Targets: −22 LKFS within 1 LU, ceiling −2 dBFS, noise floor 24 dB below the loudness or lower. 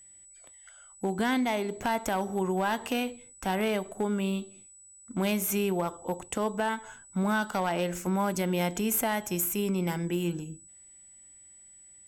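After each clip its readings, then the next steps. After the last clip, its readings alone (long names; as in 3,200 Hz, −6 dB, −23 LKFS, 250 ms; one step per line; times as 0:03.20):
share of clipped samples 0.4%; peaks flattened at −20.5 dBFS; interfering tone 7,900 Hz; level of the tone −51 dBFS; integrated loudness −30.0 LKFS; sample peak −20.5 dBFS; target loudness −22.0 LKFS
→ clipped peaks rebuilt −20.5 dBFS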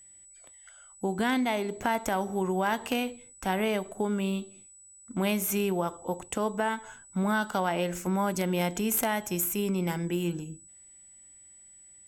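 share of clipped samples 0.0%; interfering tone 7,900 Hz; level of the tone −51 dBFS
→ notch filter 7,900 Hz, Q 30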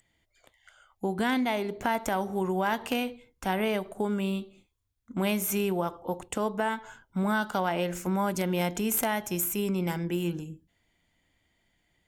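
interfering tone none found; integrated loudness −29.5 LKFS; sample peak −11.5 dBFS; target loudness −22.0 LKFS
→ level +7.5 dB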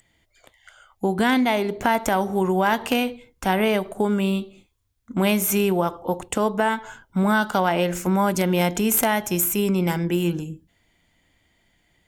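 integrated loudness −22.0 LKFS; sample peak −4.0 dBFS; background noise floor −67 dBFS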